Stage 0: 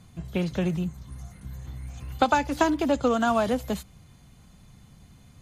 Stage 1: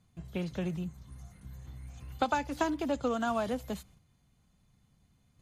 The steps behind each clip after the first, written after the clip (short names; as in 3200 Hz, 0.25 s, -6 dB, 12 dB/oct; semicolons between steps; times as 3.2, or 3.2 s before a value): gate -48 dBFS, range -8 dB; gain -8 dB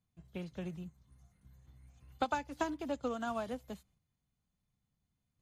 upward expander 1.5:1, over -49 dBFS; gain -3.5 dB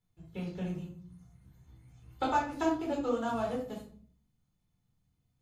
reverb RT60 0.50 s, pre-delay 9 ms, DRR -3 dB; gain -3 dB